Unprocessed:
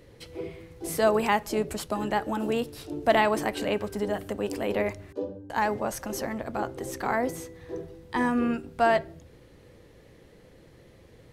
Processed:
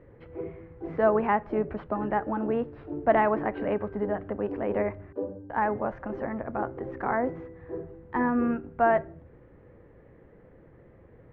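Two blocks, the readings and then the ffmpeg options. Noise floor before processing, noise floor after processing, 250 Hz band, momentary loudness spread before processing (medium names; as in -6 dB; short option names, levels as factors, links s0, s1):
-54 dBFS, -54 dBFS, 0.0 dB, 15 LU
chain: -af "lowpass=f=1800:w=0.5412,lowpass=f=1800:w=1.3066"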